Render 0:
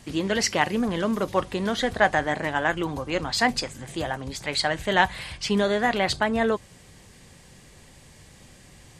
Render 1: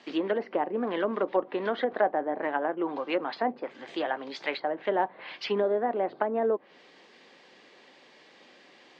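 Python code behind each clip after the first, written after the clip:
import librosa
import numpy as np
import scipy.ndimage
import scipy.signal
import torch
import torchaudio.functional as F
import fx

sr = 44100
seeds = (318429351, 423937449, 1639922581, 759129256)

y = scipy.signal.sosfilt(scipy.signal.butter(4, 290.0, 'highpass', fs=sr, output='sos'), x)
y = fx.env_lowpass_down(y, sr, base_hz=660.0, full_db=-21.0)
y = scipy.signal.sosfilt(scipy.signal.butter(4, 4400.0, 'lowpass', fs=sr, output='sos'), y)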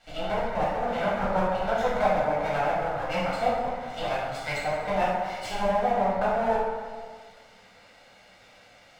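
y = fx.lower_of_two(x, sr, delay_ms=1.4)
y = fx.rev_plate(y, sr, seeds[0], rt60_s=1.6, hf_ratio=0.55, predelay_ms=0, drr_db=-9.5)
y = y * 10.0 ** (-6.0 / 20.0)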